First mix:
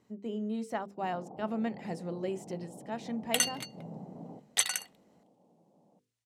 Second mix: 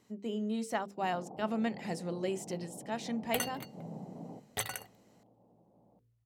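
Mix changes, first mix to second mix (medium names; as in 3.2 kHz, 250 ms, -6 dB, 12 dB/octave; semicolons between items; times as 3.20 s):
speech: add treble shelf 2.2 kHz +8 dB; second sound: remove frequency weighting ITU-R 468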